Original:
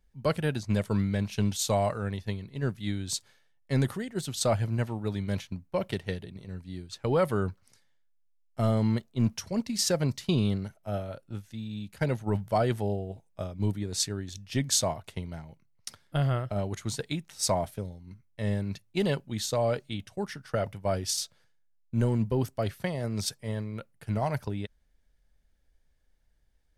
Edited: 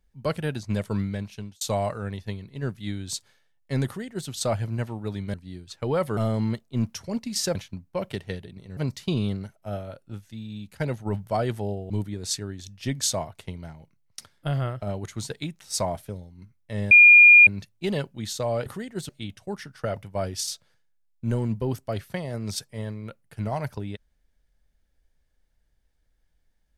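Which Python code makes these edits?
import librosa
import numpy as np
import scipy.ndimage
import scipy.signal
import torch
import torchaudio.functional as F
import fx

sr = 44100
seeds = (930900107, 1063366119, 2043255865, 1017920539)

y = fx.edit(x, sr, fx.fade_out_span(start_s=1.02, length_s=0.59),
    fx.duplicate(start_s=3.86, length_s=0.43, to_s=19.79),
    fx.move(start_s=5.34, length_s=1.22, to_s=9.98),
    fx.cut(start_s=7.39, length_s=1.21),
    fx.cut(start_s=13.11, length_s=0.48),
    fx.insert_tone(at_s=18.6, length_s=0.56, hz=2420.0, db=-8.0), tone=tone)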